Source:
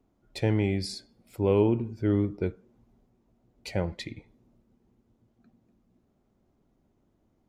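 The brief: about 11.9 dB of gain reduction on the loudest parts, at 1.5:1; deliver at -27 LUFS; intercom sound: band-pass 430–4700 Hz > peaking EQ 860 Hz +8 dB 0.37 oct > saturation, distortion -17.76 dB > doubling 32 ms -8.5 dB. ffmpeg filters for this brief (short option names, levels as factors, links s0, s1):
-filter_complex "[0:a]acompressor=threshold=0.00224:ratio=1.5,highpass=430,lowpass=4700,equalizer=f=860:t=o:w=0.37:g=8,asoftclip=threshold=0.0266,asplit=2[s0][s1];[s1]adelay=32,volume=0.376[s2];[s0][s2]amix=inputs=2:normalize=0,volume=8.41"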